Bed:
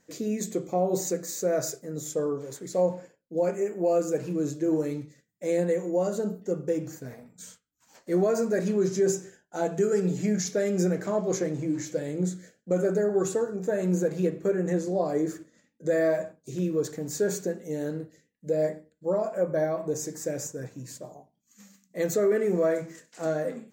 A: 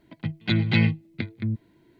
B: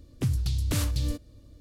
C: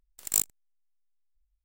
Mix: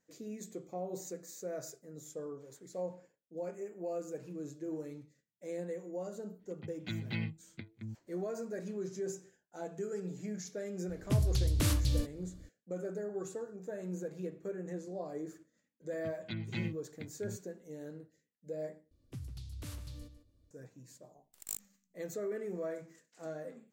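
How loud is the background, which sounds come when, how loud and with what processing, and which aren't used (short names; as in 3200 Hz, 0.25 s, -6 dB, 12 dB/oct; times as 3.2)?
bed -14.5 dB
6.39 add A -16.5 dB
10.89 add B -2.5 dB
15.81 add A -17.5 dB
18.91 replace with B -18 dB + outdoor echo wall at 26 m, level -11 dB
21.15 add C -15.5 dB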